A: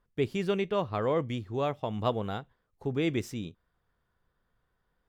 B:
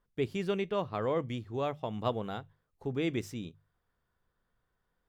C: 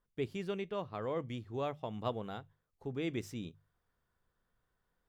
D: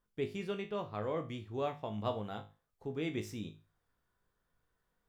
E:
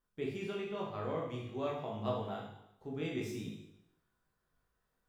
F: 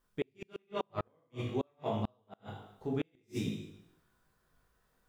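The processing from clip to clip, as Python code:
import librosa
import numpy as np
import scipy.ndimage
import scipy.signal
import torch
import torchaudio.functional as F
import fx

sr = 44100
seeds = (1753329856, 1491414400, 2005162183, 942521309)

y1 = fx.hum_notches(x, sr, base_hz=50, count=3)
y1 = y1 * librosa.db_to_amplitude(-3.0)
y2 = fx.rider(y1, sr, range_db=10, speed_s=0.5)
y2 = y2 * librosa.db_to_amplitude(-4.5)
y3 = fx.comb_fb(y2, sr, f0_hz=52.0, decay_s=0.31, harmonics='all', damping=0.0, mix_pct=80)
y3 = y3 * librosa.db_to_amplitude(6.0)
y4 = fx.rev_plate(y3, sr, seeds[0], rt60_s=0.82, hf_ratio=0.95, predelay_ms=0, drr_db=-2.5)
y4 = y4 * librosa.db_to_amplitude(-4.5)
y5 = fx.gate_flip(y4, sr, shuts_db=-30.0, range_db=-41)
y5 = y5 * librosa.db_to_amplitude(7.5)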